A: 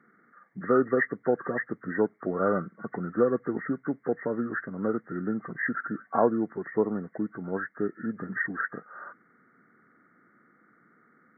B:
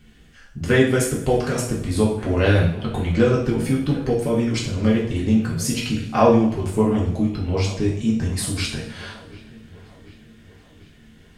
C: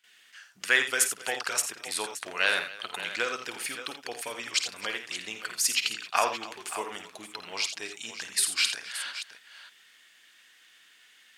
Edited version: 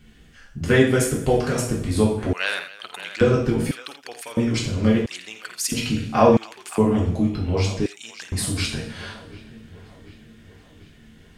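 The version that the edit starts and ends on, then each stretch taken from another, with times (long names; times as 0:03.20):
B
0:02.33–0:03.21: punch in from C
0:03.71–0:04.37: punch in from C
0:05.06–0:05.72: punch in from C
0:06.37–0:06.78: punch in from C
0:07.86–0:08.32: punch in from C
not used: A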